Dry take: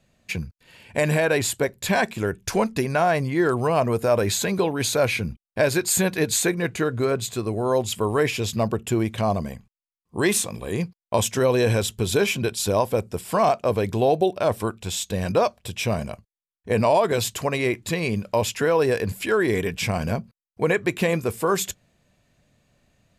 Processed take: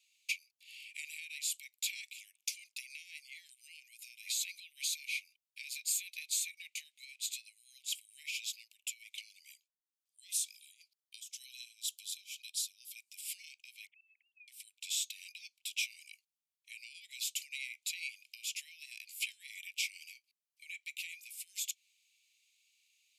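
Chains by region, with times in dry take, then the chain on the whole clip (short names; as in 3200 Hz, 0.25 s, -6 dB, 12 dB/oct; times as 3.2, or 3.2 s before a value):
3.76–4.77 notches 50/100/150/200/250/300/350/400/450 Hz + compressor, threshold -22 dBFS
9.51–12.96 band shelf 1200 Hz -9.5 dB 2.5 oct + tremolo 2 Hz, depth 94%
13.87–14.48 sine-wave speech + auto swell 0.186 s + air absorption 450 m
whole clip: compressor, threshold -31 dBFS; steep high-pass 2200 Hz 96 dB/oct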